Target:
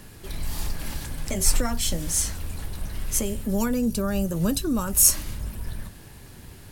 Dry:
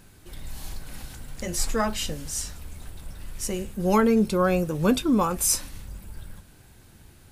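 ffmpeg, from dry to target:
-filter_complex "[0:a]acrossover=split=150|5000[a][b][c];[b]acompressor=threshold=-36dB:ratio=5[d];[a][d][c]amix=inputs=3:normalize=0,asetrate=48000,aresample=44100,volume=7dB"

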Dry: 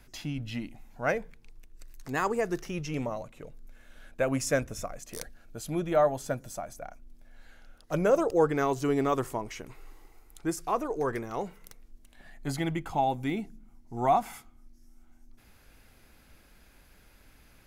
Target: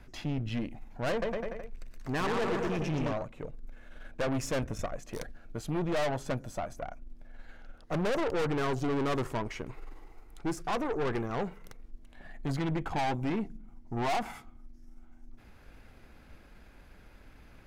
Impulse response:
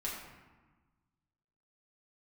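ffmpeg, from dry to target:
-filter_complex "[0:a]lowpass=f=1.9k:p=1,asettb=1/sr,asplit=3[a][b][c];[a]atrim=end=1.104[d];[b]atrim=start=1.1:end=3.13,asetpts=PTS-STARTPTS,afade=t=in:d=0.004:c=qsin,afade=t=out:st=2.026:d=0.004:c=qsin,aecho=1:1:120|228|325.2|412.7|491.4:0.631|0.398|0.251|0.158|0.1,atrim=end_sample=89523[e];[c]atrim=start=3.126[f];[d][e]acrossfade=d=0.004:c1=hsin:c2=qsin[g];[g][f]acrossfade=d=0.004:c1=qsin:c2=hsin,aeval=exprs='(tanh(56.2*val(0)+0.55)-tanh(0.55))/56.2':c=same,volume=7dB"

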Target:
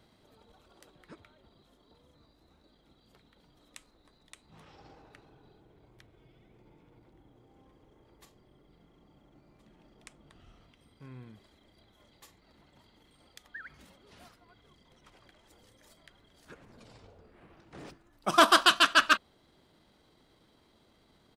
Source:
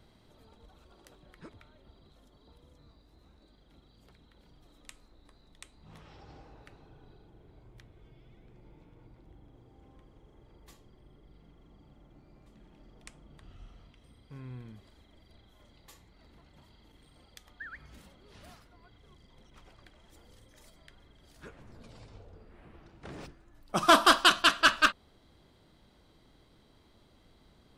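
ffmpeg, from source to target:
-af "lowshelf=f=95:g=-11.5,atempo=1.3"

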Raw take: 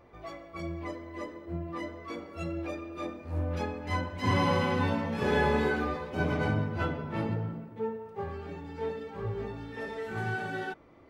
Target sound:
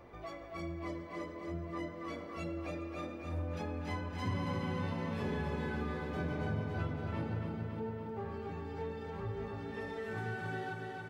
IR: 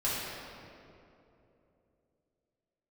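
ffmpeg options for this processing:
-filter_complex "[0:a]asplit=2[a][b];[b]aecho=0:1:409:0.126[c];[a][c]amix=inputs=2:normalize=0,acrossover=split=270[d][e];[e]acompressor=threshold=-34dB:ratio=4[f];[d][f]amix=inputs=2:normalize=0,asplit=2[g][h];[h]aecho=0:1:279|558|837|1116|1395|1674|1953|2232:0.531|0.313|0.185|0.109|0.0643|0.038|0.0224|0.0132[i];[g][i]amix=inputs=2:normalize=0,acompressor=threshold=-53dB:ratio=1.5,volume=2.5dB"

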